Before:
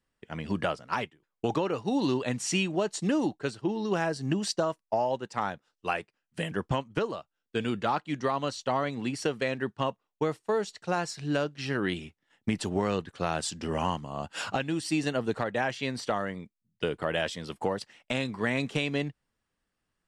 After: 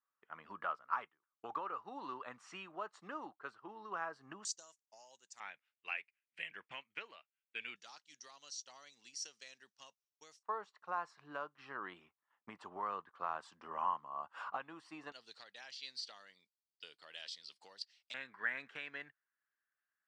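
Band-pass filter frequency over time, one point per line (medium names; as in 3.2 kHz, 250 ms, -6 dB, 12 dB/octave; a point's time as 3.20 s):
band-pass filter, Q 5
1.2 kHz
from 4.45 s 6.7 kHz
from 5.40 s 2.3 kHz
from 7.76 s 5.8 kHz
from 10.43 s 1.1 kHz
from 15.12 s 4.6 kHz
from 18.14 s 1.6 kHz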